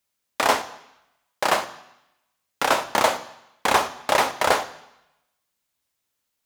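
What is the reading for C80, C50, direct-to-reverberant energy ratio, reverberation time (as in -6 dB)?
17.0 dB, 15.0 dB, 10.0 dB, 0.85 s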